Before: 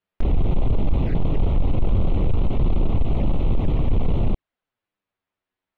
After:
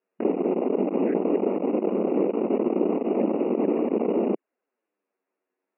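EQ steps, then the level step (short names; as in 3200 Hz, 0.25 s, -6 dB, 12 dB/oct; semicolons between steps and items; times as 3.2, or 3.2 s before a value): brick-wall FIR band-pass 190–2900 Hz; air absorption 140 m; bell 410 Hz +11.5 dB 1.3 oct; 0.0 dB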